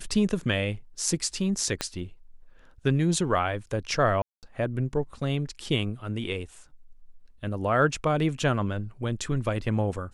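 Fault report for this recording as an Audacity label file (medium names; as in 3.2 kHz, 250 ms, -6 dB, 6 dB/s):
1.810000	1.810000	pop -13 dBFS
4.220000	4.430000	dropout 208 ms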